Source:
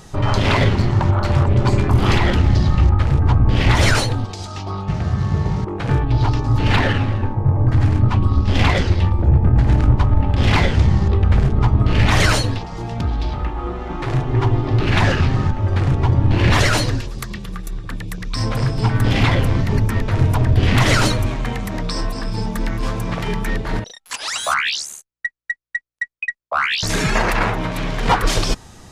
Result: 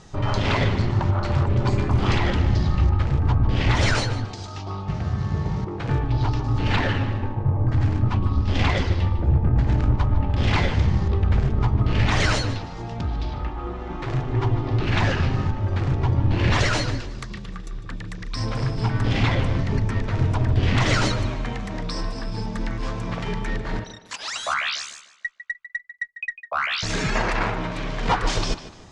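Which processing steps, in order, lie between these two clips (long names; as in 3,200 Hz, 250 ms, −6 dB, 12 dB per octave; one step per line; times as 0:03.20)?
low-pass filter 7,400 Hz 24 dB per octave
on a send: tape delay 149 ms, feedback 38%, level −11 dB, low-pass 4,900 Hz
on the sum: level −5.5 dB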